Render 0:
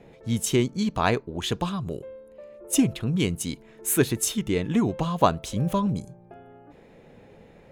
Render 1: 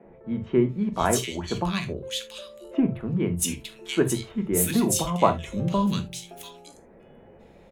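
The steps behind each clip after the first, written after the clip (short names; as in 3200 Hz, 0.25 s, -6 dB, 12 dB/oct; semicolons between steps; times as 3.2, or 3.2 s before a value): three bands offset in time mids, lows, highs 40/690 ms, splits 150/1900 Hz; non-linear reverb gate 0.1 s falling, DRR 6 dB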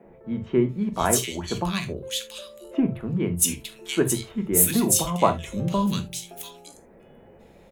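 high shelf 7800 Hz +10 dB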